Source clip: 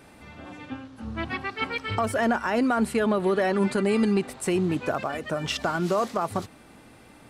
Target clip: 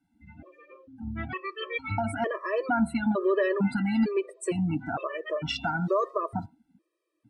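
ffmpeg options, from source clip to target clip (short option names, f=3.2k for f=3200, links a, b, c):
-af "bandreject=f=136.3:t=h:w=4,bandreject=f=272.6:t=h:w=4,bandreject=f=408.9:t=h:w=4,bandreject=f=545.2:t=h:w=4,bandreject=f=681.5:t=h:w=4,bandreject=f=817.8:t=h:w=4,bandreject=f=954.1:t=h:w=4,bandreject=f=1.0904k:t=h:w=4,bandreject=f=1.2267k:t=h:w=4,bandreject=f=1.363k:t=h:w=4,bandreject=f=1.4993k:t=h:w=4,bandreject=f=1.6356k:t=h:w=4,bandreject=f=1.7719k:t=h:w=4,bandreject=f=1.9082k:t=h:w=4,bandreject=f=2.0445k:t=h:w=4,bandreject=f=2.1808k:t=h:w=4,bandreject=f=2.3171k:t=h:w=4,bandreject=f=2.4534k:t=h:w=4,bandreject=f=2.5897k:t=h:w=4,bandreject=f=2.726k:t=h:w=4,bandreject=f=2.8623k:t=h:w=4,bandreject=f=2.9986k:t=h:w=4,bandreject=f=3.1349k:t=h:w=4,bandreject=f=3.2712k:t=h:w=4,bandreject=f=3.4075k:t=h:w=4,bandreject=f=3.5438k:t=h:w=4,bandreject=f=3.6801k:t=h:w=4,bandreject=f=3.8164k:t=h:w=4,bandreject=f=3.9527k:t=h:w=4,bandreject=f=4.089k:t=h:w=4,bandreject=f=4.2253k:t=h:w=4,bandreject=f=4.3616k:t=h:w=4,bandreject=f=4.4979k:t=h:w=4,bandreject=f=4.6342k:t=h:w=4,bandreject=f=4.7705k:t=h:w=4,bandreject=f=4.9068k:t=h:w=4,bandreject=f=5.0431k:t=h:w=4,bandreject=f=5.1794k:t=h:w=4,afftdn=nr=27:nf=-37,afftfilt=real='re*gt(sin(2*PI*1.1*pts/sr)*(1-2*mod(floor(b*sr/1024/330),2)),0)':imag='im*gt(sin(2*PI*1.1*pts/sr)*(1-2*mod(floor(b*sr/1024/330),2)),0)':win_size=1024:overlap=0.75"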